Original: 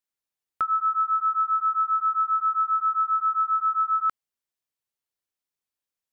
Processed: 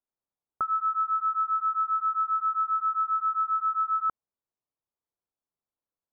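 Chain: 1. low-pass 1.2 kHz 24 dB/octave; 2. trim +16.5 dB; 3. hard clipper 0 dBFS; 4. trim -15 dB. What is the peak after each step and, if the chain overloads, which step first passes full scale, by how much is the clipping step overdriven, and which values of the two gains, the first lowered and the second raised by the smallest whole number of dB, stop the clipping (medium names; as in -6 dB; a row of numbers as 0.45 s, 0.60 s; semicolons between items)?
-22.0 dBFS, -5.5 dBFS, -5.5 dBFS, -20.5 dBFS; nothing clips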